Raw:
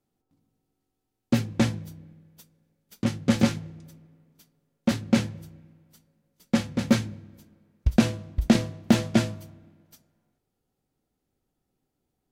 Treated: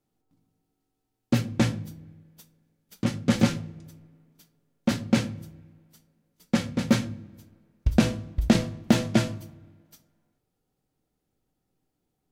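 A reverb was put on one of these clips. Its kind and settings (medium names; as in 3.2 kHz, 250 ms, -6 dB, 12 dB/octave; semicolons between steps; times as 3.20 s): simulated room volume 390 m³, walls furnished, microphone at 0.51 m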